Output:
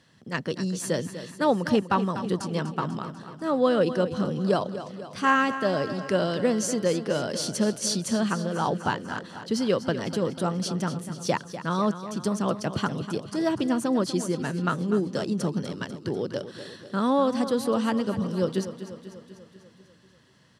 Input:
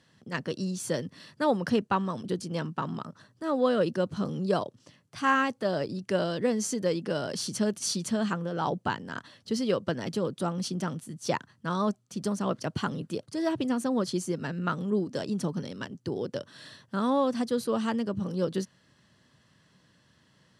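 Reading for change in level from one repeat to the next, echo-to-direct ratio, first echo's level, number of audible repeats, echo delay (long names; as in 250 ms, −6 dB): −4.5 dB, −10.0 dB, −12.0 dB, 6, 246 ms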